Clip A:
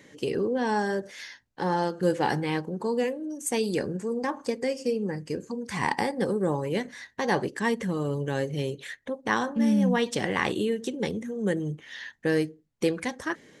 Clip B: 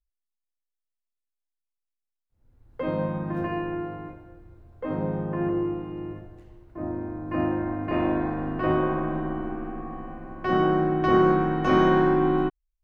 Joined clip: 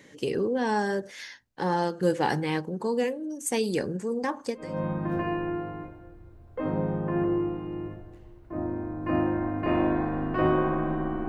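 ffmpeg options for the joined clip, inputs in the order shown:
ffmpeg -i cue0.wav -i cue1.wav -filter_complex "[0:a]apad=whole_dur=11.28,atrim=end=11.28,atrim=end=4.85,asetpts=PTS-STARTPTS[link_01];[1:a]atrim=start=2.7:end=9.53,asetpts=PTS-STARTPTS[link_02];[link_01][link_02]acrossfade=duration=0.4:curve1=qua:curve2=qua" out.wav

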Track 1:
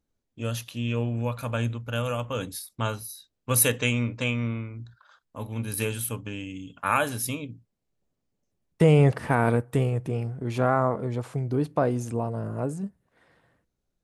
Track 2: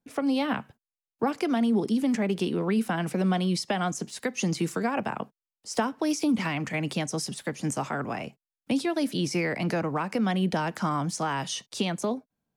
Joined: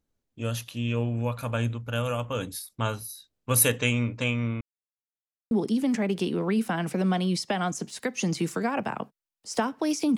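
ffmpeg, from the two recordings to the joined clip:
ffmpeg -i cue0.wav -i cue1.wav -filter_complex "[0:a]apad=whole_dur=10.17,atrim=end=10.17,asplit=2[link_01][link_02];[link_01]atrim=end=4.61,asetpts=PTS-STARTPTS,afade=type=out:start_time=4.606:duration=0.004:curve=hsin[link_03];[link_02]atrim=start=4.61:end=5.51,asetpts=PTS-STARTPTS,volume=0[link_04];[1:a]atrim=start=1.71:end=6.37,asetpts=PTS-STARTPTS,afade=type=in:duration=0.004:curve=hsin[link_05];[link_03][link_04][link_05]concat=n=3:v=0:a=1" out.wav

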